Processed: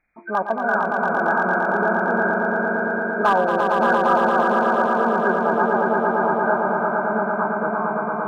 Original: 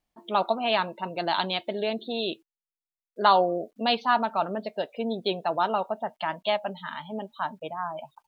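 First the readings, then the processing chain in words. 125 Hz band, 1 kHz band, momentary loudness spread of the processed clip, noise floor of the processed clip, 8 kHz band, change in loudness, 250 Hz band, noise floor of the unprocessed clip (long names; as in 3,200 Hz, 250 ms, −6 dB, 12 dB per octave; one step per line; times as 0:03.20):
+9.5 dB, +7.5 dB, 5 LU, −27 dBFS, can't be measured, +8.0 dB, +10.0 dB, below −85 dBFS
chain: hearing-aid frequency compression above 1,200 Hz 4 to 1
in parallel at 0 dB: downward compressor 6 to 1, threshold −33 dBFS, peak gain reduction 17.5 dB
on the sum: hard clipping −11 dBFS, distortion −26 dB
echo that builds up and dies away 114 ms, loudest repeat 5, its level −4.5 dB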